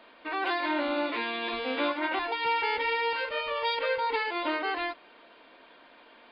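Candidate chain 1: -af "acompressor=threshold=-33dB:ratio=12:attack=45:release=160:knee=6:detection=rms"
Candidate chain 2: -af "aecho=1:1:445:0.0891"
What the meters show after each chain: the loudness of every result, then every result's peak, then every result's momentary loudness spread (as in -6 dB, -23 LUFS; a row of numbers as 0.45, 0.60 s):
-35.0, -29.5 LUFS; -23.0, -17.5 dBFS; 20, 4 LU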